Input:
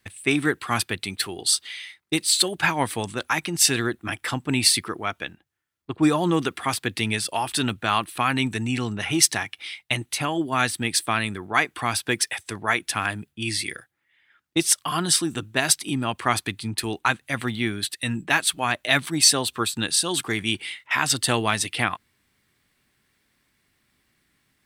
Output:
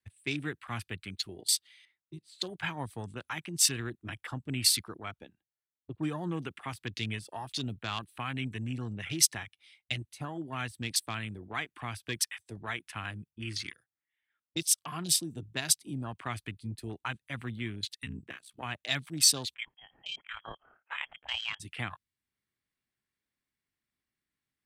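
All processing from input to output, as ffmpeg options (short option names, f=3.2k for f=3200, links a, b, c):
-filter_complex "[0:a]asettb=1/sr,asplit=3[a][b][c];[a]atrim=end=1.854[d];[b]atrim=start=1.85:end=2.42,asetpts=PTS-STARTPTS,afade=t=in:d=0.004:c=qsin,afade=t=out:st=0.566:d=0.004:c=qsin,lowpass=f=1.1k:p=1,acrossover=split=160|3000[e][f][g];[f]acompressor=threshold=-39dB:ratio=6:attack=3.2:release=140:knee=2.83:detection=peak[h];[e][h][g]amix=inputs=3:normalize=0[i];[c]atrim=start=2.416[j];[d][i]acrossfade=d=0.004:c1=hsin:c2=qsin[k];[k][j]acrossfade=d=0.004:c1=qsin:c2=hsin,asettb=1/sr,asplit=3[l][m][n];[l]atrim=end=18.054[o];[m]atrim=start=18.05:end=18.63,asetpts=PTS-STARTPTS,afade=t=in:d=0.004:c=qsin,afade=t=out:st=0.576:d=0.004:c=qsin,acompressor=threshold=-23dB:ratio=12:attack=3.2:release=140:knee=1:detection=peak,aeval=exprs='val(0)*sin(2*PI*32*n/s)':c=same[p];[n]atrim=start=18.626[q];[o][p]acrossfade=d=0.004:c1=hsin:c2=qsin[r];[r][q]acrossfade=d=0.004:c1=qsin:c2=hsin,asettb=1/sr,asplit=3[s][t][u];[s]atrim=end=19.544[v];[t]atrim=start=19.54:end=21.6,asetpts=PTS-STARTPTS,afade=t=in:d=0.004:c=qsin,afade=t=out:st=2.056:d=0.004:c=qsin,highpass=f=220:w=0.5412,highpass=f=220:w=1.3066,lowpass=f=3k:t=q:w=0.5098,lowpass=f=3k:t=q:w=0.6013,lowpass=f=3k:t=q:w=0.9,lowpass=f=3k:t=q:w=2.563,afreqshift=-3500,tremolo=f=36:d=0.462[w];[u]atrim=start=21.596[x];[v][w]acrossfade=d=0.004:c1=hsin:c2=qsin[y];[y][x]acrossfade=d=0.004:c1=qsin:c2=hsin,afwtdn=0.0316,acrossover=split=160|3000[z][aa][ab];[aa]acompressor=threshold=-48dB:ratio=1.5[ac];[z][ac][ab]amix=inputs=3:normalize=0,volume=-5.5dB"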